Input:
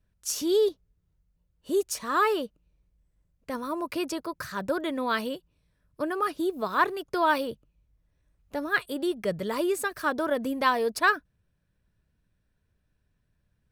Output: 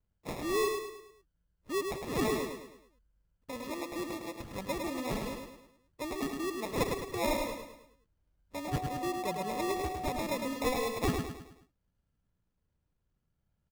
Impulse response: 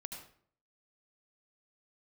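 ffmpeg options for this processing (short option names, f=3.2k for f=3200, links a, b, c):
-filter_complex "[0:a]acrusher=samples=29:mix=1:aa=0.000001,aecho=1:1:106|212|318|424|530:0.562|0.247|0.109|0.0479|0.0211,asettb=1/sr,asplit=3[a][b][c];[a]atrim=end=8.684[d];[b]atrim=start=8.68:end=10.19,asetpts=PTS-STARTPTS,afade=t=in:d=0.004:c=qsin,afade=t=out:st=1.506:d=0.004:c=qsin,aeval=exprs='val(0)+0.0355*sin(2*PI*740*n/s)':c=same[e];[c]atrim=start=10.186[f];[d][e]acrossfade=d=0.004:c1=hsin:c2=qsin[g];[g][f]acrossfade=d=0.004:c1=qsin:c2=hsin,volume=-8dB"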